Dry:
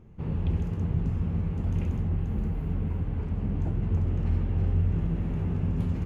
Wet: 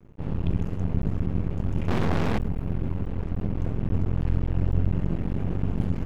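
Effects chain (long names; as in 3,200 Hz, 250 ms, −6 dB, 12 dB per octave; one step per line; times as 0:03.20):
0:01.88–0:02.38: mid-hump overdrive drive 45 dB, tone 1,200 Hz, clips at −18 dBFS
half-wave rectification
level +5 dB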